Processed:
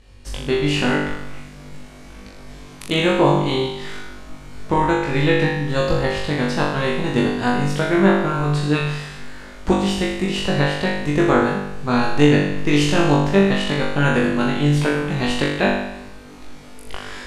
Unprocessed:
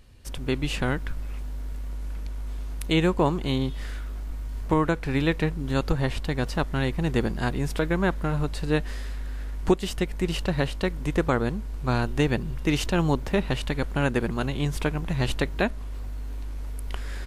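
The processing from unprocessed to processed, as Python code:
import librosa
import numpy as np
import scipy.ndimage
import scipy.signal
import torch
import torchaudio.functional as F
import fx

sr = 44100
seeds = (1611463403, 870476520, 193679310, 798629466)

y = scipy.signal.sosfilt(scipy.signal.butter(2, 8300.0, 'lowpass', fs=sr, output='sos'), x)
y = fx.hum_notches(y, sr, base_hz=50, count=3)
y = fx.room_flutter(y, sr, wall_m=3.5, rt60_s=0.87)
y = F.gain(torch.from_numpy(y), 3.0).numpy()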